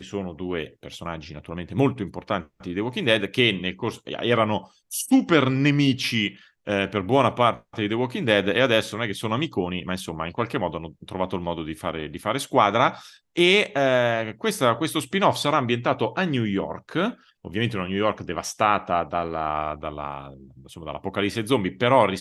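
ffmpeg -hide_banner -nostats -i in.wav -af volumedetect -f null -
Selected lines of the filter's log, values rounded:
mean_volume: -24.0 dB
max_volume: -3.2 dB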